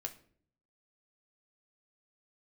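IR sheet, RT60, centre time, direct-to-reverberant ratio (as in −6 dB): 0.55 s, 7 ms, 2.5 dB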